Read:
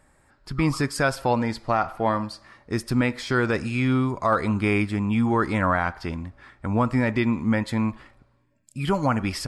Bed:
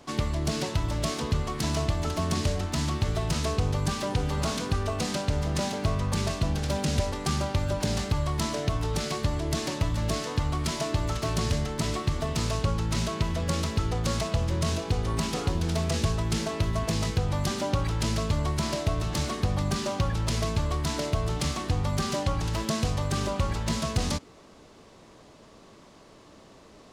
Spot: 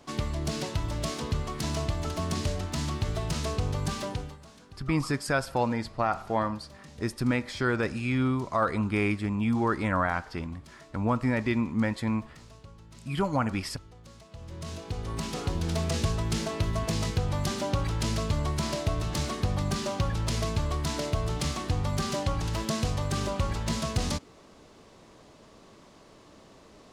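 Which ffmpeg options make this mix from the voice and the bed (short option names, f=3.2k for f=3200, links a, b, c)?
-filter_complex "[0:a]adelay=4300,volume=-4.5dB[a];[1:a]volume=18.5dB,afade=t=out:st=4.02:d=0.36:silence=0.1,afade=t=in:st=14.28:d=1.48:silence=0.0841395[b];[a][b]amix=inputs=2:normalize=0"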